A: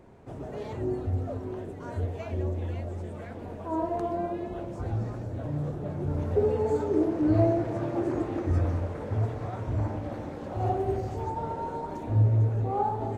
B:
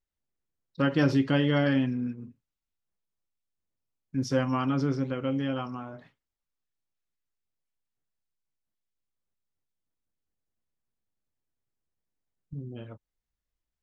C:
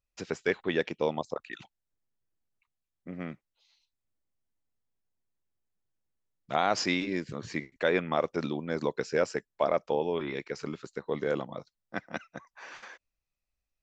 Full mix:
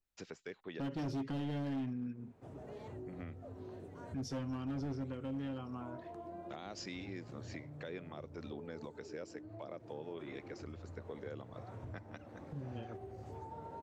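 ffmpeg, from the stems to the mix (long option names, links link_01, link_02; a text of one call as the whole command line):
ffmpeg -i stem1.wav -i stem2.wav -i stem3.wav -filter_complex "[0:a]highpass=frequency=62:width=0.5412,highpass=frequency=62:width=1.3066,acompressor=threshold=-33dB:ratio=10,adelay=2150,volume=-10.5dB[link_01];[1:a]adynamicequalizer=threshold=0.00891:dfrequency=1600:dqfactor=0.7:tfrequency=1600:tqfactor=0.7:attack=5:release=100:ratio=0.375:range=2:mode=cutabove:tftype=highshelf,volume=-1.5dB,asplit=2[link_02][link_03];[2:a]volume=-9.5dB[link_04];[link_03]apad=whole_len=609541[link_05];[link_04][link_05]sidechaincompress=threshold=-45dB:ratio=8:attack=16:release=499[link_06];[link_01][link_02][link_06]amix=inputs=3:normalize=0,acrossover=split=480|3000[link_07][link_08][link_09];[link_08]acompressor=threshold=-42dB:ratio=6[link_10];[link_07][link_10][link_09]amix=inputs=3:normalize=0,asoftclip=type=hard:threshold=-26.5dB,alimiter=level_in=10.5dB:limit=-24dB:level=0:latency=1:release=420,volume=-10.5dB" out.wav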